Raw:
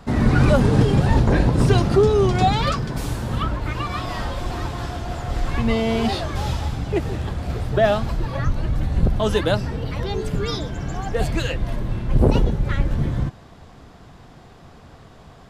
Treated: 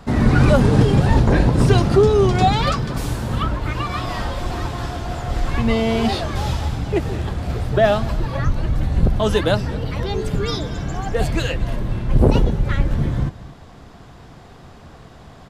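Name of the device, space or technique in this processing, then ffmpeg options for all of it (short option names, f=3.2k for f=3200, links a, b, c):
ducked delay: -filter_complex "[0:a]asplit=3[a][b][c];[b]adelay=225,volume=-6dB[d];[c]apad=whole_len=693331[e];[d][e]sidechaincompress=threshold=-31dB:ratio=8:attack=16:release=816[f];[a][f]amix=inputs=2:normalize=0,volume=2dB"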